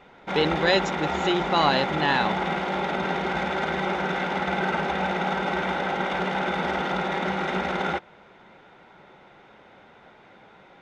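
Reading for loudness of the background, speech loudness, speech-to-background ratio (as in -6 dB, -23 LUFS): -26.5 LUFS, -25.0 LUFS, 1.5 dB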